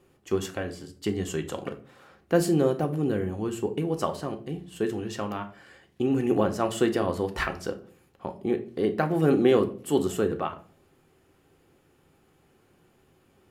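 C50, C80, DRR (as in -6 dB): 14.5 dB, 19.5 dB, 6.0 dB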